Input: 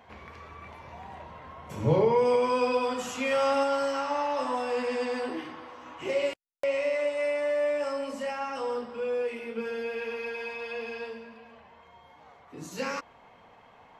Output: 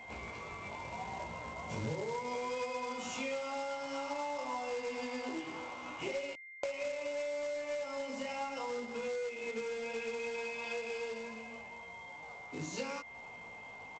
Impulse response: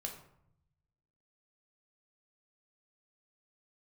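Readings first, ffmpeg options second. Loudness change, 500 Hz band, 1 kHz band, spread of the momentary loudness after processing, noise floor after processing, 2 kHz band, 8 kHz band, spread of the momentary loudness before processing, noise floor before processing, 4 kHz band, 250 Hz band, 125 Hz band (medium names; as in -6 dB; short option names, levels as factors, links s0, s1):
-10.5 dB, -10.5 dB, -9.0 dB, 8 LU, -50 dBFS, -5.0 dB, -2.5 dB, 20 LU, -56 dBFS, -5.5 dB, -8.5 dB, -11.0 dB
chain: -af "flanger=delay=17:depth=2.5:speed=0.68,acompressor=threshold=0.00891:ratio=8,superequalizer=10b=0.501:11b=0.355,aresample=16000,acrusher=bits=3:mode=log:mix=0:aa=0.000001,aresample=44100,aeval=exprs='val(0)+0.002*sin(2*PI*2100*n/s)':c=same,equalizer=f=1400:t=o:w=0.89:g=3,volume=1.68"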